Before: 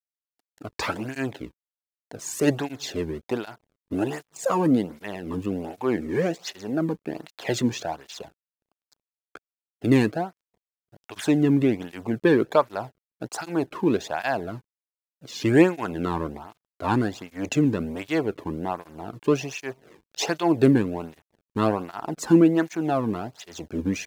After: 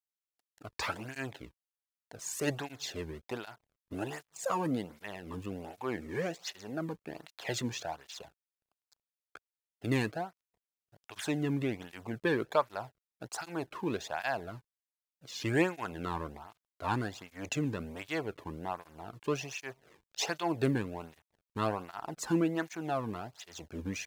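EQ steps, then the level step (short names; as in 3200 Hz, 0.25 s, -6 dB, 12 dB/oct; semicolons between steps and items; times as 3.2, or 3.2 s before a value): bell 280 Hz -8 dB 2 oct; -5.5 dB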